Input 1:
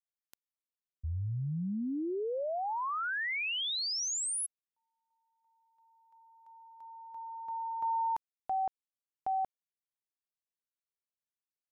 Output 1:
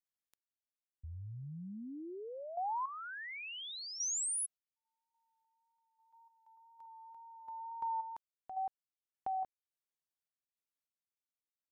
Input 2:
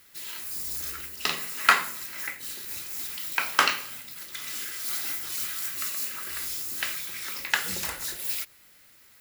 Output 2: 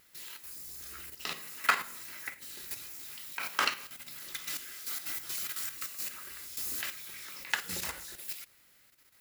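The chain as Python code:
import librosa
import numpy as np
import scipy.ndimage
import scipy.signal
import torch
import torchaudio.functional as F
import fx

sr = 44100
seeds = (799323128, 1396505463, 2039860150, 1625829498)

y = fx.tremolo_random(x, sr, seeds[0], hz=3.5, depth_pct=55)
y = fx.wow_flutter(y, sr, seeds[1], rate_hz=2.1, depth_cents=19.0)
y = fx.level_steps(y, sr, step_db=9)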